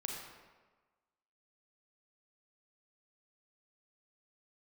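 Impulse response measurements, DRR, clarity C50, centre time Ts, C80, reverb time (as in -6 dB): -0.5 dB, 1.0 dB, 67 ms, 3.0 dB, 1.3 s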